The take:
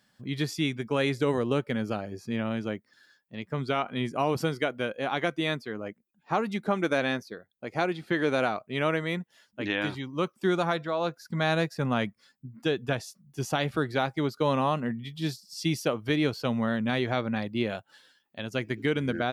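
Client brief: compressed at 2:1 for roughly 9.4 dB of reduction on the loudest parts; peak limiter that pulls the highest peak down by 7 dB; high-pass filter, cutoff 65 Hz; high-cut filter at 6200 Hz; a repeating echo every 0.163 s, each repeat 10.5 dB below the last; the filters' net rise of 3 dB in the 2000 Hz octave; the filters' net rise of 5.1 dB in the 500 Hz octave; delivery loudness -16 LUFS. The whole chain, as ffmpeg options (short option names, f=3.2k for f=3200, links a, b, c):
-af "highpass=65,lowpass=6.2k,equalizer=f=500:t=o:g=6,equalizer=f=2k:t=o:g=3.5,acompressor=threshold=-35dB:ratio=2,alimiter=limit=-24dB:level=0:latency=1,aecho=1:1:163|326|489:0.299|0.0896|0.0269,volume=20dB"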